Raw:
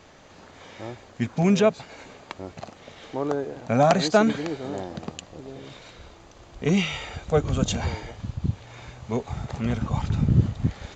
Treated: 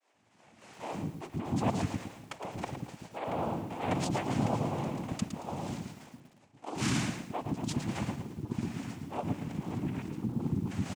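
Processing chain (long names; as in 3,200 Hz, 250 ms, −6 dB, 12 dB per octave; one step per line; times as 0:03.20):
downward expander −38 dBFS
low-shelf EQ 290 Hz +11 dB
reversed playback
downward compressor 10 to 1, threshold −28 dBFS, peak gain reduction 23.5 dB
reversed playback
cochlear-implant simulation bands 4
multiband delay without the direct sound highs, lows 130 ms, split 370 Hz
feedback echo at a low word length 112 ms, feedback 35%, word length 9 bits, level −8 dB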